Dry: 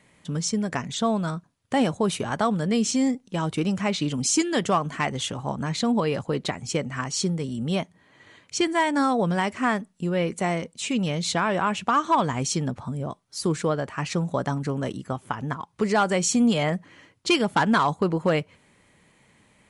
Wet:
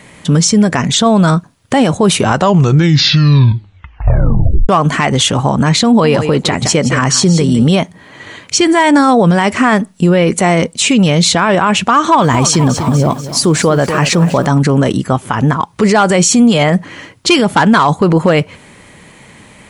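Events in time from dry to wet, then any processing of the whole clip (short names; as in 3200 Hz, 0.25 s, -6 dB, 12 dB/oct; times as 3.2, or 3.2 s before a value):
2.14 tape stop 2.55 s
5.87–7.69 echo 0.168 s -13 dB
11.97–14.46 lo-fi delay 0.243 s, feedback 55%, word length 8-bit, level -14 dB
whole clip: maximiser +21 dB; gain -1 dB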